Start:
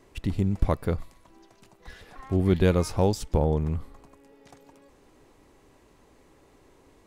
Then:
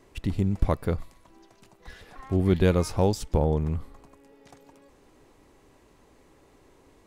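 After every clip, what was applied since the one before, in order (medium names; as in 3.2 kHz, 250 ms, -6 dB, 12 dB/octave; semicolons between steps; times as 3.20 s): no audible change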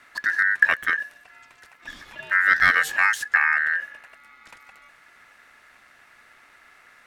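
dynamic bell 670 Hz, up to -5 dB, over -37 dBFS, Q 0.76; ring modulator 1.7 kHz; trim +7 dB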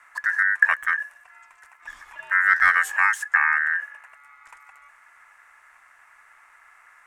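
graphic EQ 125/250/500/1000/2000/4000/8000 Hz -9/-11/-5/+11/+5/-10/+8 dB; trim -6 dB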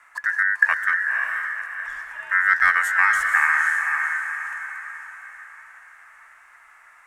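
echo that smears into a reverb 519 ms, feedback 44%, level -4 dB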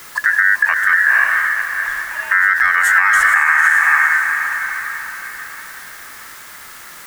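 in parallel at -11 dB: word length cut 6-bit, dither triangular; on the sum: loudness maximiser +9.5 dB; trim -1 dB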